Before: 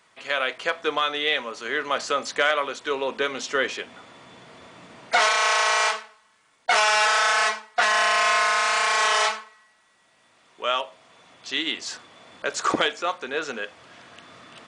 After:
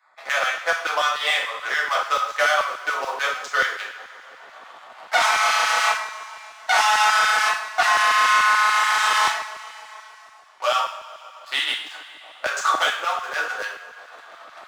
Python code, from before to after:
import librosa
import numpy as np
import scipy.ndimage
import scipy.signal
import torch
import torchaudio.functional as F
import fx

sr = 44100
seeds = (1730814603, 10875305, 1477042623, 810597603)

y = fx.wiener(x, sr, points=15)
y = fx.low_shelf_res(y, sr, hz=550.0, db=-9.0, q=1.5)
y = fx.leveller(y, sr, passes=2)
y = fx.transient(y, sr, attack_db=1, sustain_db=-6)
y = fx.rev_double_slope(y, sr, seeds[0], early_s=0.5, late_s=2.1, knee_db=-18, drr_db=-4.5)
y = fx.filter_lfo_highpass(y, sr, shape='saw_down', hz=6.9, low_hz=320.0, high_hz=1500.0, q=0.75)
y = fx.band_squash(y, sr, depth_pct=40)
y = F.gain(torch.from_numpy(y), -7.5).numpy()